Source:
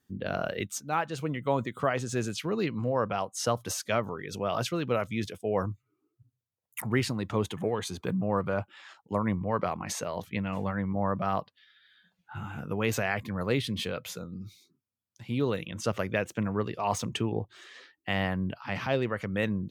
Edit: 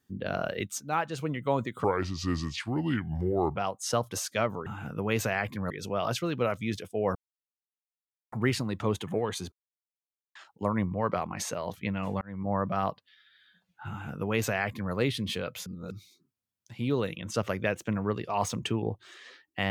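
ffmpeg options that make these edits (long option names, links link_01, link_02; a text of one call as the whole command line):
ffmpeg -i in.wav -filter_complex "[0:a]asplit=12[link_01][link_02][link_03][link_04][link_05][link_06][link_07][link_08][link_09][link_10][link_11][link_12];[link_01]atrim=end=1.844[link_13];[link_02]atrim=start=1.84:end=3.09,asetpts=PTS-STARTPTS,asetrate=32193,aresample=44100[link_14];[link_03]atrim=start=3.086:end=4.202[link_15];[link_04]atrim=start=12.388:end=13.432[link_16];[link_05]atrim=start=4.198:end=5.65,asetpts=PTS-STARTPTS,afade=type=out:start_time=1.448:duration=0.004:curve=hsin[link_17];[link_06]atrim=start=5.65:end=6.82,asetpts=PTS-STARTPTS,volume=0[link_18];[link_07]atrim=start=6.82:end=8.02,asetpts=PTS-STARTPTS,afade=type=in:duration=0.004:curve=hsin,afade=type=out:start_time=1.196:duration=0.004:curve=hsin[link_19];[link_08]atrim=start=8.02:end=8.85,asetpts=PTS-STARTPTS,volume=0[link_20];[link_09]atrim=start=8.85:end=10.71,asetpts=PTS-STARTPTS,afade=type=in:duration=0.004:curve=hsin,afade=type=out:start_time=1.856:duration=0.004:curve=hsin[link_21];[link_10]atrim=start=10.71:end=14.162,asetpts=PTS-STARTPTS,afade=type=in:duration=0.3[link_22];[link_11]atrim=start=14.158:end=14.412,asetpts=PTS-STARTPTS,areverse[link_23];[link_12]atrim=start=14.408[link_24];[link_13][link_14]acrossfade=duration=0.004:curve1=hsin:curve2=hsin[link_25];[link_25][link_15]acrossfade=duration=0.004:curve1=hsin:curve2=hsin[link_26];[link_26][link_16]acrossfade=duration=0.004:curve1=hsin:curve2=hsin[link_27];[link_17][link_18][link_19][link_20][link_21][link_22]concat=n=6:v=0:a=1[link_28];[link_27][link_28]acrossfade=duration=0.004:curve1=hsin:curve2=hsin[link_29];[link_29][link_23]acrossfade=duration=0.004:curve1=hsin:curve2=hsin[link_30];[link_30][link_24]acrossfade=duration=0.004:curve1=hsin:curve2=hsin" out.wav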